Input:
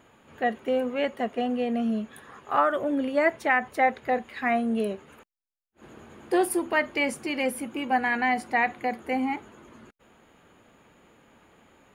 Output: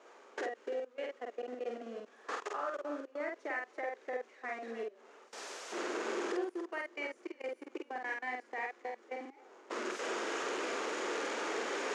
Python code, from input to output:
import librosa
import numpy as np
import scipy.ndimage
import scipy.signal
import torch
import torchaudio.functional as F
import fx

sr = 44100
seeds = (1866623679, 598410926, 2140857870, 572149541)

p1 = x + 0.5 * 10.0 ** (-34.0 / 20.0) * np.sign(x)
p2 = fx.recorder_agc(p1, sr, target_db=-19.0, rise_db_per_s=37.0, max_gain_db=30)
p3 = p2 + fx.echo_feedback(p2, sr, ms=285, feedback_pct=44, wet_db=-13.5, dry=0)
p4 = fx.level_steps(p3, sr, step_db=24)
p5 = fx.peak_eq(p4, sr, hz=4100.0, db=-10.5, octaves=2.6)
p6 = fx.doubler(p5, sr, ms=48.0, db=-2.5)
p7 = fx.dynamic_eq(p6, sr, hz=750.0, q=1.2, threshold_db=-41.0, ratio=4.0, max_db=-7)
p8 = scipy.signal.sosfilt(scipy.signal.ellip(3, 1.0, 50, [390.0, 6500.0], 'bandpass', fs=sr, output='sos'), p7)
y = p8 * librosa.db_to_amplitude(-6.5)